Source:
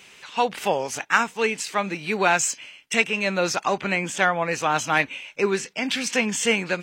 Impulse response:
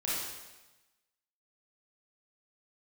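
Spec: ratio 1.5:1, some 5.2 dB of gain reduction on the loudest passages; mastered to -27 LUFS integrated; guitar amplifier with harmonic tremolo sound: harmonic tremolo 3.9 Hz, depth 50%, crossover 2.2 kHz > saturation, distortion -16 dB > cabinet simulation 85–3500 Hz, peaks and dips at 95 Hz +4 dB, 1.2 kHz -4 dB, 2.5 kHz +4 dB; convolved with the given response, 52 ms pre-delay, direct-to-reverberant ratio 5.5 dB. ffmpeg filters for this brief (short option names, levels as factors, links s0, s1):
-filter_complex "[0:a]acompressor=threshold=0.0355:ratio=1.5,asplit=2[s0][s1];[1:a]atrim=start_sample=2205,adelay=52[s2];[s1][s2]afir=irnorm=-1:irlink=0,volume=0.266[s3];[s0][s3]amix=inputs=2:normalize=0,acrossover=split=2200[s4][s5];[s4]aeval=exprs='val(0)*(1-0.5/2+0.5/2*cos(2*PI*3.9*n/s))':c=same[s6];[s5]aeval=exprs='val(0)*(1-0.5/2-0.5/2*cos(2*PI*3.9*n/s))':c=same[s7];[s6][s7]amix=inputs=2:normalize=0,asoftclip=threshold=0.0944,highpass=85,equalizer=f=95:t=q:w=4:g=4,equalizer=f=1200:t=q:w=4:g=-4,equalizer=f=2500:t=q:w=4:g=4,lowpass=f=3500:w=0.5412,lowpass=f=3500:w=1.3066,volume=1.41"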